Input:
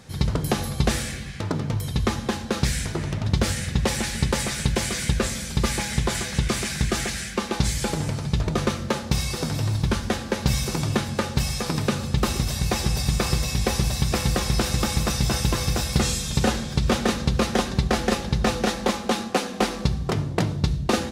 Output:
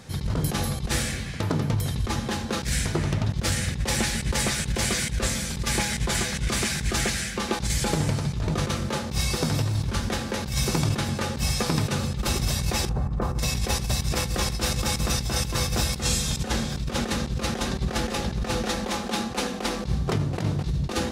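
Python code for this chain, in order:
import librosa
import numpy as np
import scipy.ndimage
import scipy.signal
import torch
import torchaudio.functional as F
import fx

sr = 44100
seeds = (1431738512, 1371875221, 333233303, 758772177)

y = fx.lowpass(x, sr, hz=1300.0, slope=24, at=(12.89, 13.39))
y = y + 10.0 ** (-20.0 / 20.0) * np.pad(y, (int(985 * sr / 1000.0), 0))[:len(y)]
y = fx.over_compress(y, sr, threshold_db=-24.0, ratio=-0.5)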